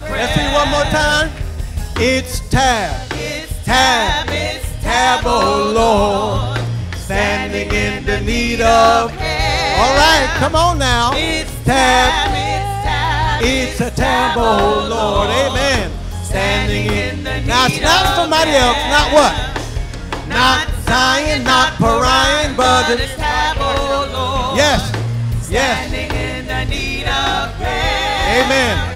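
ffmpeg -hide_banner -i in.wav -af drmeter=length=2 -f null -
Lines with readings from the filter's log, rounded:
Channel 1: DR: 8.1
Overall DR: 8.1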